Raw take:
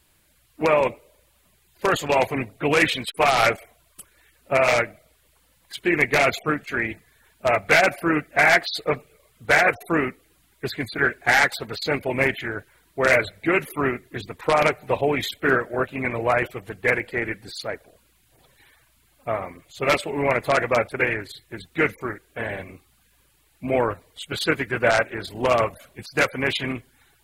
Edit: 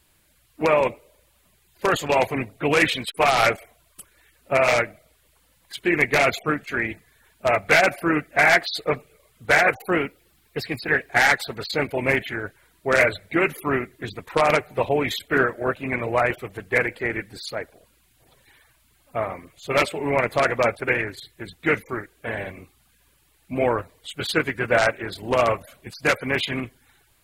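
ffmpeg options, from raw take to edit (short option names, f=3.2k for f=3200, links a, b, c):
-filter_complex "[0:a]asplit=3[a][b][c];[a]atrim=end=9.744[d];[b]atrim=start=9.74:end=11.21,asetpts=PTS-STARTPTS,asetrate=48069,aresample=44100,atrim=end_sample=59474,asetpts=PTS-STARTPTS[e];[c]atrim=start=11.206[f];[d][e]acrossfade=d=0.004:c1=hsin:c2=hsin[g];[g][f]acrossfade=d=0.004:c1=hsin:c2=hsin"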